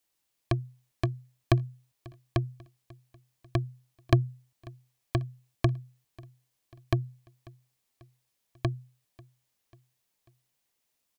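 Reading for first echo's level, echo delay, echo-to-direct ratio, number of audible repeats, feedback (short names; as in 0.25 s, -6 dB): -24.0 dB, 0.542 s, -22.5 dB, 2, 53%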